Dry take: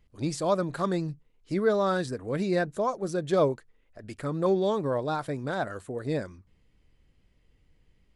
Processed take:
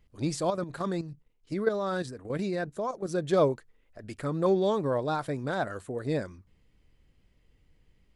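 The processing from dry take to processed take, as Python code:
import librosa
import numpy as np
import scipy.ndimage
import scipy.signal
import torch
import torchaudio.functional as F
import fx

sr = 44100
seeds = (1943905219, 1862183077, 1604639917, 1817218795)

y = fx.level_steps(x, sr, step_db=10, at=(0.5, 3.11))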